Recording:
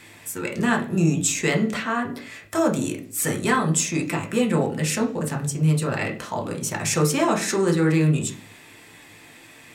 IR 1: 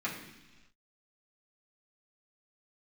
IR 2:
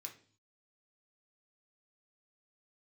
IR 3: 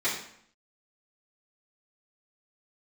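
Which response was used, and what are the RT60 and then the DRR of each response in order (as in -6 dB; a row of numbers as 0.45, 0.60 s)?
2; not exponential, 0.45 s, 0.65 s; -7.5, 1.5, -11.0 dB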